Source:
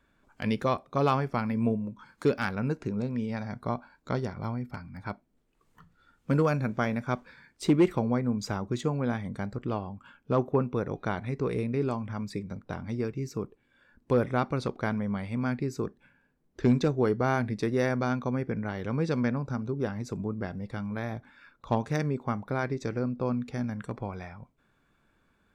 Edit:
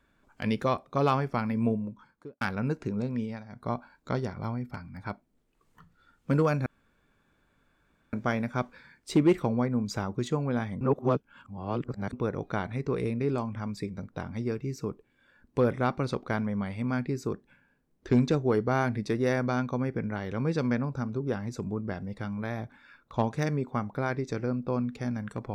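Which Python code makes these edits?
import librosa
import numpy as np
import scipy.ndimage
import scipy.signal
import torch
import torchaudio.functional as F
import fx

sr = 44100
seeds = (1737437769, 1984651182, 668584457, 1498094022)

y = fx.studio_fade_out(x, sr, start_s=1.77, length_s=0.64)
y = fx.edit(y, sr, fx.fade_down_up(start_s=3.2, length_s=0.52, db=-11.5, fade_s=0.24),
    fx.insert_room_tone(at_s=6.66, length_s=1.47),
    fx.reverse_span(start_s=9.34, length_s=1.32), tone=tone)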